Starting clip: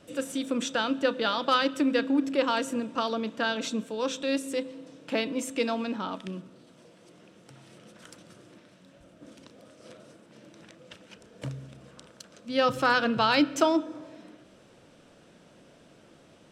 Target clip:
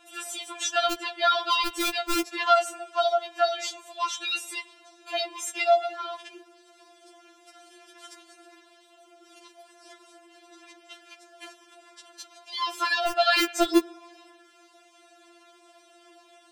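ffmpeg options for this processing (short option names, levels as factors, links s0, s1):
-filter_complex "[0:a]acrossover=split=380|1400|3100[s0][s1][s2][s3];[s0]acrusher=bits=3:mix=0:aa=0.000001[s4];[s4][s1][s2][s3]amix=inputs=4:normalize=0,afftfilt=real='re*4*eq(mod(b,16),0)':imag='im*4*eq(mod(b,16),0)':win_size=2048:overlap=0.75,volume=2.11"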